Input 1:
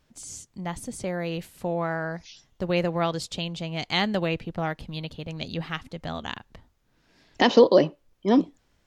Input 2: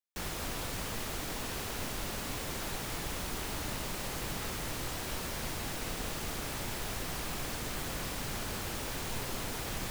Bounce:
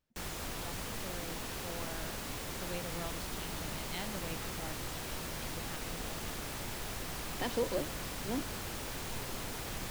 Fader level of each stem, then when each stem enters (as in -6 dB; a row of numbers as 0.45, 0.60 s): -18.0, -3.0 dB; 0.00, 0.00 s